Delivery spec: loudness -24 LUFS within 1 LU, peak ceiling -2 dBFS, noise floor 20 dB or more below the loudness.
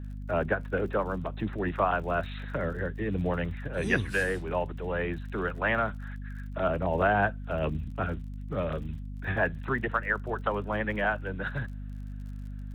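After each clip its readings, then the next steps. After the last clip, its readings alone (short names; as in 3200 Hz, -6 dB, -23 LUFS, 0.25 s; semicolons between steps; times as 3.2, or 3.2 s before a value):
ticks 42/s; hum 50 Hz; harmonics up to 250 Hz; hum level -36 dBFS; loudness -30.5 LUFS; peak -12.0 dBFS; loudness target -24.0 LUFS
-> de-click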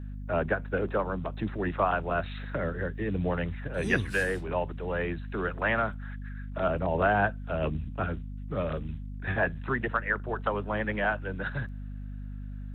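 ticks 0.16/s; hum 50 Hz; harmonics up to 250 Hz; hum level -36 dBFS
-> notches 50/100/150/200/250 Hz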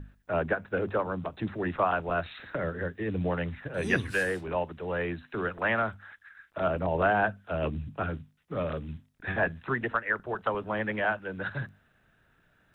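hum none; loudness -31.0 LUFS; peak -12.5 dBFS; loudness target -24.0 LUFS
-> gain +7 dB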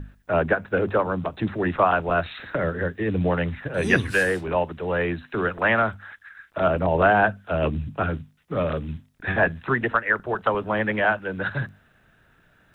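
loudness -24.0 LUFS; peak -5.5 dBFS; noise floor -60 dBFS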